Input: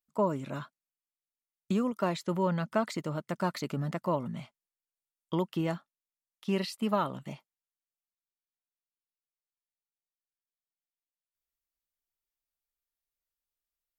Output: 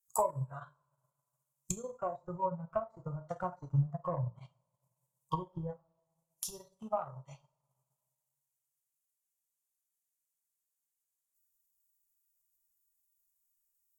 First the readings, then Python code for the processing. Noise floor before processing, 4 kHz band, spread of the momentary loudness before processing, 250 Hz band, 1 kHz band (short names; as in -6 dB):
under -85 dBFS, -13.0 dB, 12 LU, -12.0 dB, -3.0 dB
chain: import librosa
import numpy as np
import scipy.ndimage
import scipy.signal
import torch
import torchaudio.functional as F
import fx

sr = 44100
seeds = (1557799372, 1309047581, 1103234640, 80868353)

y = fx.env_lowpass_down(x, sr, base_hz=560.0, full_db=-29.5)
y = fx.curve_eq(y, sr, hz=(130.0, 200.0, 330.0, 480.0, 1000.0, 2000.0, 3600.0, 6900.0), db=(0, -28, -29, -14, -1, -20, -14, 14))
y = fx.rev_double_slope(y, sr, seeds[0], early_s=0.63, late_s=1.9, knee_db=-18, drr_db=2.0)
y = fx.transient(y, sr, attack_db=6, sustain_db=-9)
y = fx.noise_reduce_blind(y, sr, reduce_db=12)
y = y * librosa.db_to_amplitude(8.0)